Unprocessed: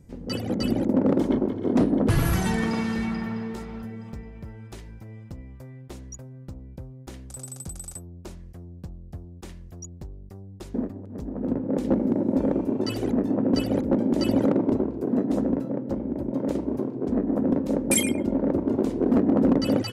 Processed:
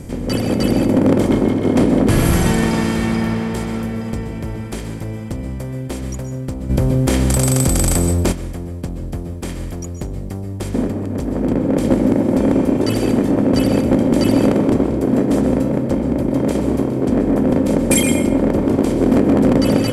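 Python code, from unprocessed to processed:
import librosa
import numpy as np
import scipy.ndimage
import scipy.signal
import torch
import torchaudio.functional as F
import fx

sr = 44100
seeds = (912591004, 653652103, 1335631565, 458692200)

y = fx.bin_compress(x, sr, power=0.6)
y = fx.rev_plate(y, sr, seeds[0], rt60_s=0.52, hf_ratio=0.75, predelay_ms=115, drr_db=8.0)
y = fx.env_flatten(y, sr, amount_pct=70, at=(6.69, 8.31), fade=0.02)
y = y * librosa.db_to_amplitude(4.0)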